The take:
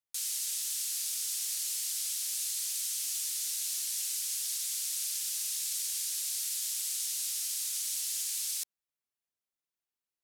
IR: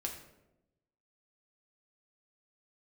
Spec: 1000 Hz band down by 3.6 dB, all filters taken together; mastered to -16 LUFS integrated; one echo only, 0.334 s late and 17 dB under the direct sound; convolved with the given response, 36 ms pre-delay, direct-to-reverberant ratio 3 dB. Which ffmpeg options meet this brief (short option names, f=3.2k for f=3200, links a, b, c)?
-filter_complex "[0:a]equalizer=f=1k:t=o:g=-5,aecho=1:1:334:0.141,asplit=2[a][b];[1:a]atrim=start_sample=2205,adelay=36[c];[b][c]afir=irnorm=-1:irlink=0,volume=-3dB[d];[a][d]amix=inputs=2:normalize=0,volume=14dB"